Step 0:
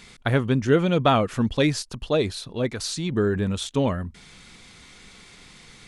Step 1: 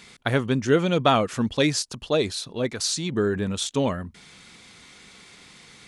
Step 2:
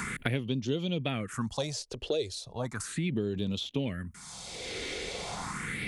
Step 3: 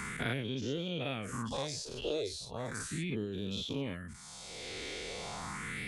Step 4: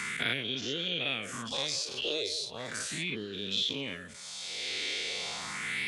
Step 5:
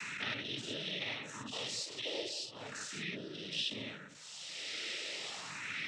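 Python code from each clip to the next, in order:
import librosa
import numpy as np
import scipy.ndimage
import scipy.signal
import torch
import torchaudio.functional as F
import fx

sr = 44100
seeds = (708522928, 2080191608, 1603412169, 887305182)

y1 = fx.highpass(x, sr, hz=140.0, slope=6)
y1 = fx.dynamic_eq(y1, sr, hz=6500.0, q=0.86, threshold_db=-45.0, ratio=4.0, max_db=6)
y2 = fx.phaser_stages(y1, sr, stages=4, low_hz=180.0, high_hz=1600.0, hz=0.36, feedback_pct=45)
y2 = fx.band_squash(y2, sr, depth_pct=100)
y2 = F.gain(torch.from_numpy(y2), -7.5).numpy()
y3 = fx.spec_dilate(y2, sr, span_ms=120)
y3 = F.gain(torch.from_numpy(y3), -9.0).numpy()
y4 = fx.weighting(y3, sr, curve='D')
y4 = fx.echo_stepped(y4, sr, ms=179, hz=500.0, octaves=0.7, feedback_pct=70, wet_db=-11.0)
y4 = F.gain(torch.from_numpy(y4), -1.0).numpy()
y5 = fx.noise_vocoder(y4, sr, seeds[0], bands=12)
y5 = F.gain(torch.from_numpy(y5), -6.0).numpy()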